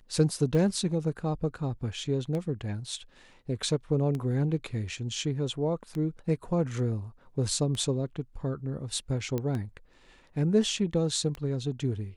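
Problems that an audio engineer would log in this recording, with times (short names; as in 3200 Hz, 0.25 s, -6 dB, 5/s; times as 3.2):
tick 33 1/3 rpm -22 dBFS
9.38 pop -18 dBFS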